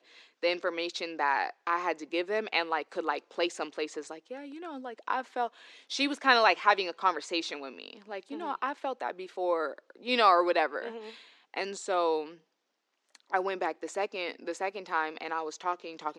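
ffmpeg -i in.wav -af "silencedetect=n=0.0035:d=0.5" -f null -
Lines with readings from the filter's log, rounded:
silence_start: 12.36
silence_end: 13.15 | silence_duration: 0.80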